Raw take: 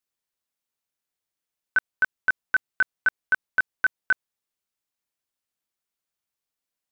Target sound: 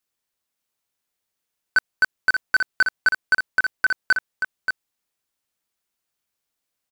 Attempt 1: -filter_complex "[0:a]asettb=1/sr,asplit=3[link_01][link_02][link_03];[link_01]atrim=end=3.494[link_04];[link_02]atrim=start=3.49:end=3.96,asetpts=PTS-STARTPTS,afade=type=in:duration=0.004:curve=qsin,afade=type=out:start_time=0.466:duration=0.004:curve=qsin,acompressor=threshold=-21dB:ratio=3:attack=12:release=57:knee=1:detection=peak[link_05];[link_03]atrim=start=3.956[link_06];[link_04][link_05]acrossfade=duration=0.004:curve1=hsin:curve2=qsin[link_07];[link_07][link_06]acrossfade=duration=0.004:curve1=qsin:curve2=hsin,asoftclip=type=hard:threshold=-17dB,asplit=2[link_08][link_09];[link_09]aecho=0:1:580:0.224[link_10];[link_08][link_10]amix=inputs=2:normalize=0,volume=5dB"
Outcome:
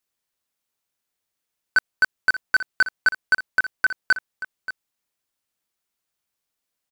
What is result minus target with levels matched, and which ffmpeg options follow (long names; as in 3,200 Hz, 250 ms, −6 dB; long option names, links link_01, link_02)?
echo-to-direct −7 dB
-filter_complex "[0:a]asettb=1/sr,asplit=3[link_01][link_02][link_03];[link_01]atrim=end=3.494[link_04];[link_02]atrim=start=3.49:end=3.96,asetpts=PTS-STARTPTS,afade=type=in:duration=0.004:curve=qsin,afade=type=out:start_time=0.466:duration=0.004:curve=qsin,acompressor=threshold=-21dB:ratio=3:attack=12:release=57:knee=1:detection=peak[link_05];[link_03]atrim=start=3.956[link_06];[link_04][link_05]acrossfade=duration=0.004:curve1=hsin:curve2=qsin[link_07];[link_07][link_06]acrossfade=duration=0.004:curve1=qsin:curve2=hsin,asoftclip=type=hard:threshold=-17dB,asplit=2[link_08][link_09];[link_09]aecho=0:1:580:0.501[link_10];[link_08][link_10]amix=inputs=2:normalize=0,volume=5dB"